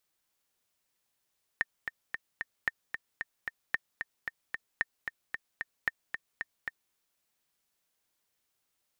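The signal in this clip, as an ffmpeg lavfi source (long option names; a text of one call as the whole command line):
ffmpeg -f lavfi -i "aevalsrc='pow(10,(-14-7*gte(mod(t,4*60/225),60/225))/20)*sin(2*PI*1820*mod(t,60/225))*exp(-6.91*mod(t,60/225)/0.03)':duration=5.33:sample_rate=44100" out.wav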